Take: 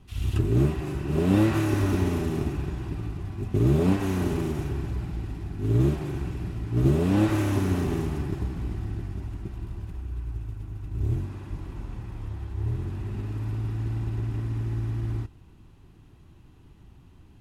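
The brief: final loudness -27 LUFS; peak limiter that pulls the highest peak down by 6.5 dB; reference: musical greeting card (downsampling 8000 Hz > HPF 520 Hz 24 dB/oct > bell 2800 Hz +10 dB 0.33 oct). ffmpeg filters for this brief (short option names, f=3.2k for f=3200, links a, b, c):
-af "alimiter=limit=-15dB:level=0:latency=1,aresample=8000,aresample=44100,highpass=f=520:w=0.5412,highpass=f=520:w=1.3066,equalizer=f=2.8k:t=o:w=0.33:g=10,volume=12.5dB"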